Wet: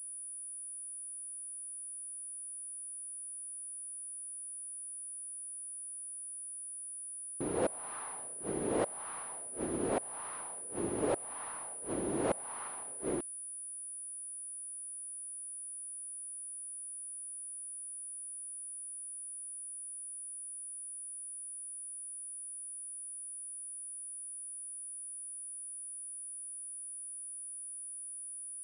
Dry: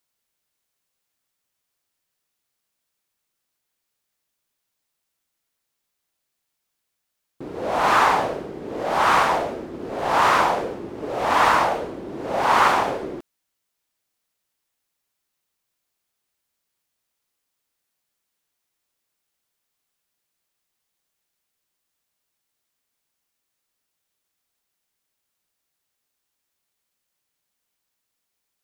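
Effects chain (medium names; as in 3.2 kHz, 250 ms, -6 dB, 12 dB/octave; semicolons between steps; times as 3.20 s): spectral noise reduction 14 dB; inverted gate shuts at -18 dBFS, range -28 dB; class-D stage that switches slowly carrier 9.8 kHz; trim -2 dB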